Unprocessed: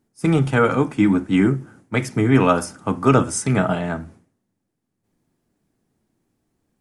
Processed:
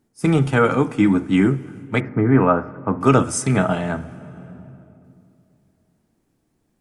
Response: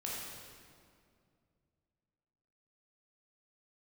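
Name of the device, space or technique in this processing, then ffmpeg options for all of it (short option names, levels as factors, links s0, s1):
compressed reverb return: -filter_complex "[0:a]asplit=2[s0][s1];[1:a]atrim=start_sample=2205[s2];[s1][s2]afir=irnorm=-1:irlink=0,acompressor=threshold=0.0447:ratio=6,volume=0.473[s3];[s0][s3]amix=inputs=2:normalize=0,asettb=1/sr,asplit=3[s4][s5][s6];[s4]atrim=end=2.004[s7];[s5]atrim=start=2:end=3.01,asetpts=PTS-STARTPTS,afade=t=in:d=0.004:c=qsin,afade=t=out:st=1.006:d=0.004:c=qsin,lowpass=f=1800:w=0.5412,lowpass=f=1800:w=1.3066[s8];[s6]atrim=start=3.006[s9];[s7][s8]acrossfade=d=0.004:c1=hsin:c2=qsin[s10];[s10][s9]acrossfade=d=0.004:c1=qsin:c2=hsin"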